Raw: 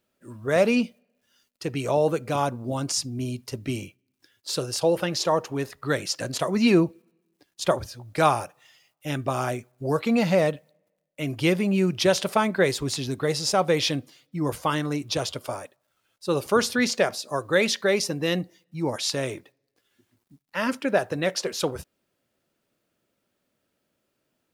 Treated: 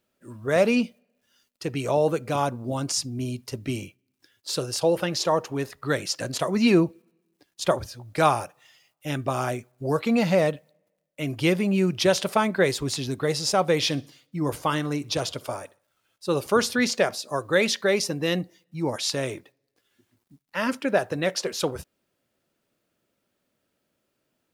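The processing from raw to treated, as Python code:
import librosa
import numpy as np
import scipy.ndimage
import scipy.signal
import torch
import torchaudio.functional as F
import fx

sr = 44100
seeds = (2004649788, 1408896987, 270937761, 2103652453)

y = fx.echo_feedback(x, sr, ms=62, feedback_pct=40, wet_db=-22.5, at=(13.76, 16.28))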